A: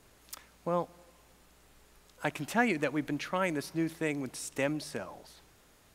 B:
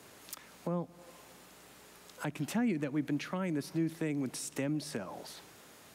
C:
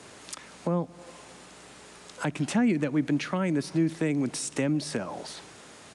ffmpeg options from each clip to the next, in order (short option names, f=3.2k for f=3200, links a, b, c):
-filter_complex "[0:a]highpass=140,acrossover=split=290[a][b];[b]acompressor=threshold=-45dB:ratio=5[c];[a][c]amix=inputs=2:normalize=0,asplit=2[d][e];[e]alimiter=level_in=12dB:limit=-24dB:level=0:latency=1:release=224,volume=-12dB,volume=-1dB[f];[d][f]amix=inputs=2:normalize=0,volume=1.5dB"
-af "aresample=22050,aresample=44100,volume=7.5dB"